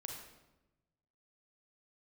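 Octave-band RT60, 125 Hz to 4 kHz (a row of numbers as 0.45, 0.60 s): 1.6, 1.3, 1.1, 0.95, 0.80, 0.75 s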